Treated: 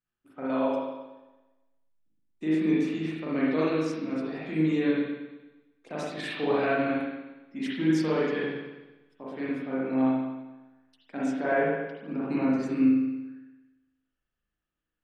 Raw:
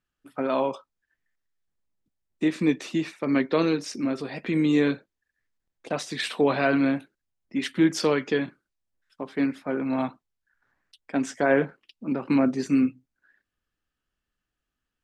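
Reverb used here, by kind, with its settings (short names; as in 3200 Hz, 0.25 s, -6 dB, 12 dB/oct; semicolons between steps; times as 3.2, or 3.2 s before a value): spring tank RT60 1.1 s, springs 38/57 ms, chirp 45 ms, DRR -7.5 dB; gain -11.5 dB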